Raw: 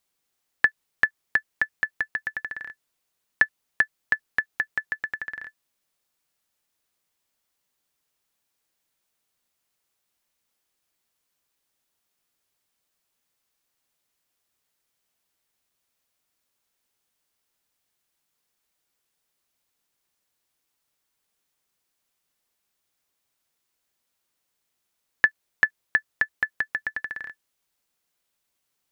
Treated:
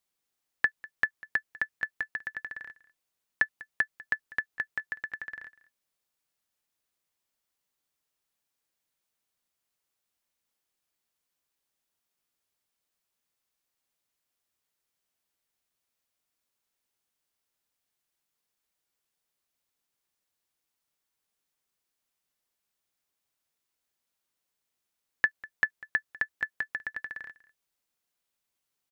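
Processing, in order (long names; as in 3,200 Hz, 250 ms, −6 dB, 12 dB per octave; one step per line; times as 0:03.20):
single-tap delay 197 ms −20.5 dB
level −6 dB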